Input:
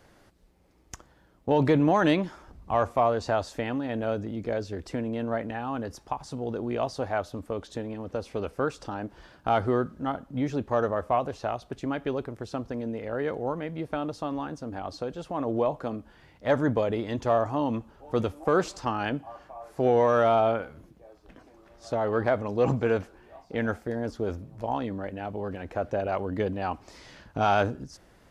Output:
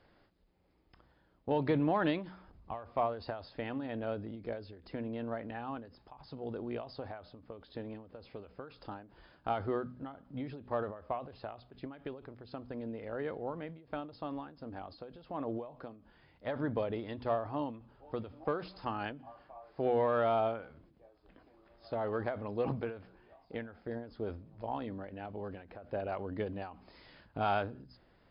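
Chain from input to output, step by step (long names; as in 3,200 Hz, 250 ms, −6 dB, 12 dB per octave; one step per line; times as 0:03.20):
linear-phase brick-wall low-pass 5,200 Hz
hum removal 62.03 Hz, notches 4
every ending faded ahead of time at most 110 dB per second
level −8 dB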